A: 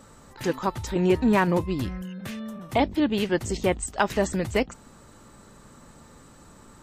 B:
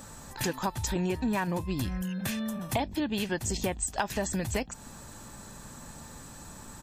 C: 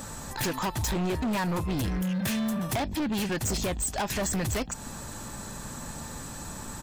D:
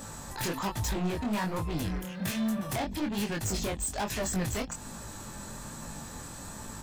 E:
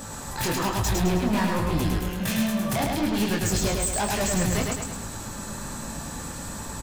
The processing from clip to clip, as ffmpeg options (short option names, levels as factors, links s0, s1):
-af "highshelf=f=5500:g=10.5,aecho=1:1:1.2:0.33,acompressor=threshold=0.0316:ratio=5,volume=1.33"
-af "volume=44.7,asoftclip=hard,volume=0.0224,volume=2.24"
-af "flanger=delay=18:depth=6.8:speed=1.2"
-af "aecho=1:1:106|212|318|424|530|636|742:0.708|0.354|0.177|0.0885|0.0442|0.0221|0.0111,volume=1.78"